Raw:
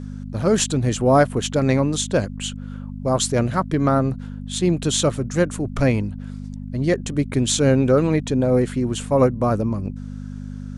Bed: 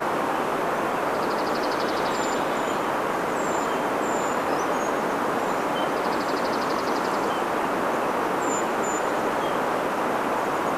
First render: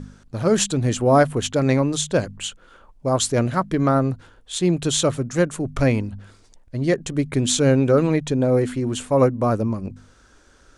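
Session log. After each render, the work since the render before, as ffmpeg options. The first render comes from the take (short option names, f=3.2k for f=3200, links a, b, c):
-af "bandreject=f=50:t=h:w=4,bandreject=f=100:t=h:w=4,bandreject=f=150:t=h:w=4,bandreject=f=200:t=h:w=4,bandreject=f=250:t=h:w=4"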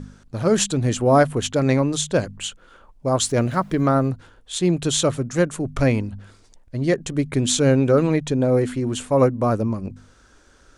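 -filter_complex "[0:a]asettb=1/sr,asplit=3[a][b][c];[a]atrim=end=3.194[d];[b]atrim=start=3.19:end=4.09,asetpts=PTS-STARTPTS,afade=t=in:d=0.004:c=qsin,afade=t=out:st=0.896:d=0.004:c=qsin,aeval=exprs='val(0)*gte(abs(val(0)),0.00473)':c=same[e];[c]atrim=start=4.086[f];[d][e]acrossfade=d=0.004:c1=hsin:c2=qsin[g];[g][f]acrossfade=d=0.004:c1=qsin:c2=hsin"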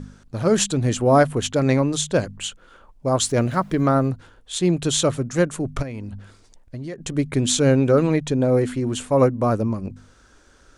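-filter_complex "[0:a]asplit=3[a][b][c];[a]afade=t=out:st=5.81:d=0.02[d];[b]acompressor=threshold=-28dB:ratio=8:attack=3.2:release=140:knee=1:detection=peak,afade=t=in:st=5.81:d=0.02,afade=t=out:st=6.98:d=0.02[e];[c]afade=t=in:st=6.98:d=0.02[f];[d][e][f]amix=inputs=3:normalize=0"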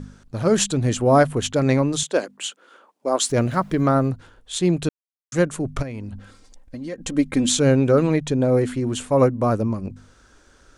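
-filter_complex "[0:a]asettb=1/sr,asplit=3[a][b][c];[a]atrim=end=2.034[d];[b]atrim=start=2.03:end=3.3,asetpts=PTS-STARTPTS,afade=t=in:d=0.004:c=qsin,afade=t=out:st=1.266:d=0.004:c=qsin,highpass=f=270:w=0.5412,highpass=f=270:w=1.3066[e];[c]atrim=start=3.296[f];[d][e]acrossfade=d=0.004:c1=hsin:c2=qsin[g];[g][f]acrossfade=d=0.004:c1=qsin:c2=hsin,asettb=1/sr,asplit=3[h][i][j];[h]atrim=end=6.154[k];[i]atrim=start=6.15:end=7.49,asetpts=PTS-STARTPTS,afade=t=in:d=0.004:c=qsin,afade=t=out:st=1.336:d=0.004:c=qsin,aecho=1:1:3.8:0.65,atrim=end_sample=59094[l];[j]atrim=start=7.486[m];[k][l]acrossfade=d=0.004:c1=hsin:c2=qsin[n];[n][m]acrossfade=d=0.004:c1=qsin:c2=hsin,asplit=3[o][p][q];[o]atrim=end=4.89,asetpts=PTS-STARTPTS,afade=t=out:st=4.886:d=0.004:c=hsin[r];[p]atrim=start=4.89:end=5.32,asetpts=PTS-STARTPTS,volume=0[s];[q]atrim=start=5.32,asetpts=PTS-STARTPTS,afade=t=in:d=0.004:c=hsin[t];[r][s][t]concat=n=3:v=0:a=1"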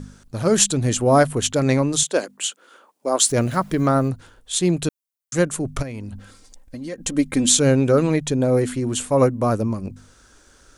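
-af "highshelf=f=6.2k:g=11"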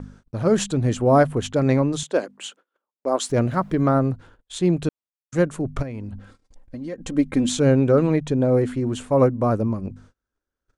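-af "lowpass=f=1.5k:p=1,agate=range=-31dB:threshold=-47dB:ratio=16:detection=peak"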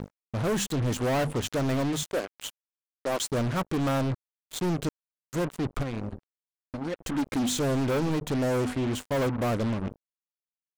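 -af "acrusher=bits=4:mix=0:aa=0.5,asoftclip=type=tanh:threshold=-23.5dB"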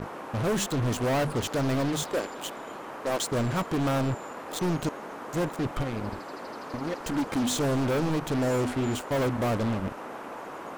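-filter_complex "[1:a]volume=-14.5dB[a];[0:a][a]amix=inputs=2:normalize=0"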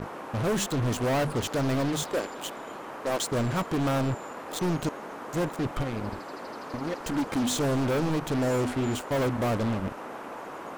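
-af anull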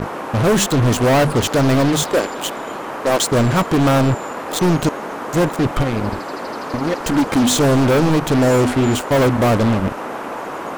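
-af "volume=12dB"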